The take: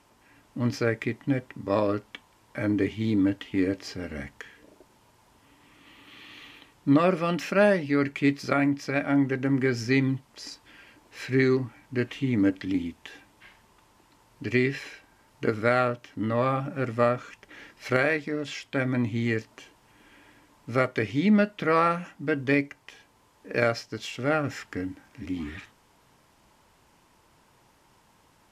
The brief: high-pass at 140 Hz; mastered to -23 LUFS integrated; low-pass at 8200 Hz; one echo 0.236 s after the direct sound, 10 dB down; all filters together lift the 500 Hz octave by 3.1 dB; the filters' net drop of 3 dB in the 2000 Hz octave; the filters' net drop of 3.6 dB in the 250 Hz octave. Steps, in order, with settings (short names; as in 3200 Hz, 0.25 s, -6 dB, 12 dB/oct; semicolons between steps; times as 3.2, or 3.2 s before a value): HPF 140 Hz; LPF 8200 Hz; bell 250 Hz -5.5 dB; bell 500 Hz +5.5 dB; bell 2000 Hz -4 dB; echo 0.236 s -10 dB; gain +3.5 dB